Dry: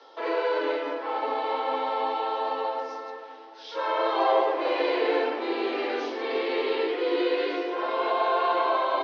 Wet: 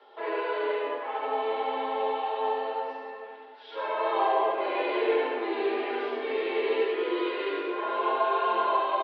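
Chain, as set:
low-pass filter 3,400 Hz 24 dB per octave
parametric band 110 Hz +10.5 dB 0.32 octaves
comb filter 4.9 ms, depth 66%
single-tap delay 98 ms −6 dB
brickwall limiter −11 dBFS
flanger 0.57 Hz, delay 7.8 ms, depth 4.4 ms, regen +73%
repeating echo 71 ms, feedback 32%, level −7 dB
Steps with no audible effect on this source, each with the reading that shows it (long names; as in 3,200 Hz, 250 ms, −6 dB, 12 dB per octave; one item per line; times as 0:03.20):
parametric band 110 Hz: nothing at its input below 240 Hz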